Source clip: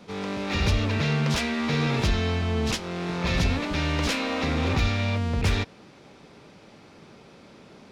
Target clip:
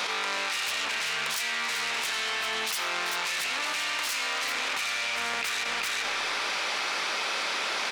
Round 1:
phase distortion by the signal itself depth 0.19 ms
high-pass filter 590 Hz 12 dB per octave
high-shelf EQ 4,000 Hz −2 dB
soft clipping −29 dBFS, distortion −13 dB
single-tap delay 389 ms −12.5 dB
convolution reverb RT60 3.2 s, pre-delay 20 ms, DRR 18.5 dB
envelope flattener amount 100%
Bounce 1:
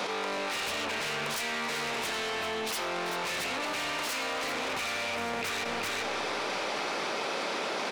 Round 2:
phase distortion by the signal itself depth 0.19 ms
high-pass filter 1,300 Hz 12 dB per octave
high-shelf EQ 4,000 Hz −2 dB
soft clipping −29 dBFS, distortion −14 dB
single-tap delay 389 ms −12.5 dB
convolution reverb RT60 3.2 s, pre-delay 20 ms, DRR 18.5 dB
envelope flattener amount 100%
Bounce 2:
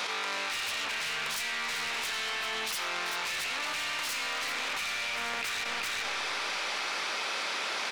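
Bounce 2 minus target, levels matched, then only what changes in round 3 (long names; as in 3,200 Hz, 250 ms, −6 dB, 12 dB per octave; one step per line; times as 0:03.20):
soft clipping: distortion +13 dB
change: soft clipping −19.5 dBFS, distortion −26 dB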